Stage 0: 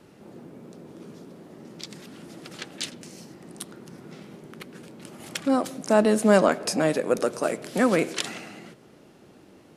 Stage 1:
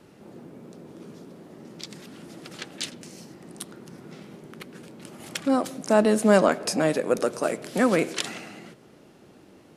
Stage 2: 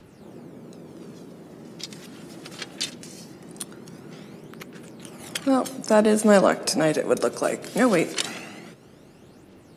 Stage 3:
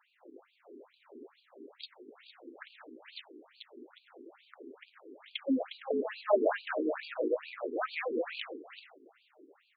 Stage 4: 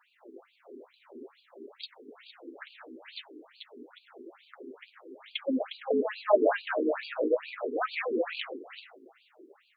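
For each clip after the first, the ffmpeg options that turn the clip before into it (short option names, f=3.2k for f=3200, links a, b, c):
-af anull
-filter_complex "[0:a]acrossover=split=150|3100[a][b][c];[a]acompressor=mode=upward:threshold=-51dB:ratio=2.5[d];[c]aphaser=in_gain=1:out_gain=1:delay=2.4:decay=0.64:speed=0.21:type=triangular[e];[d][b][e]amix=inputs=3:normalize=0,volume=1.5dB"
-af "aecho=1:1:210|357|459.9|531.9|582.4:0.631|0.398|0.251|0.158|0.1,afftfilt=real='re*between(b*sr/1024,310*pow(3400/310,0.5+0.5*sin(2*PI*2.3*pts/sr))/1.41,310*pow(3400/310,0.5+0.5*sin(2*PI*2.3*pts/sr))*1.41)':imag='im*between(b*sr/1024,310*pow(3400/310,0.5+0.5*sin(2*PI*2.3*pts/sr))/1.41,310*pow(3400/310,0.5+0.5*sin(2*PI*2.3*pts/sr))*1.41)':win_size=1024:overlap=0.75,volume=-6dB"
-af "flanger=delay=4.1:depth=4.4:regen=-33:speed=0.51:shape=sinusoidal,volume=7.5dB"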